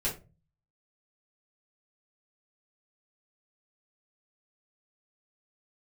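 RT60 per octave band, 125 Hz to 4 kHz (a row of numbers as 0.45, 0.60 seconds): 0.70, 0.50, 0.35, 0.25, 0.25, 0.20 seconds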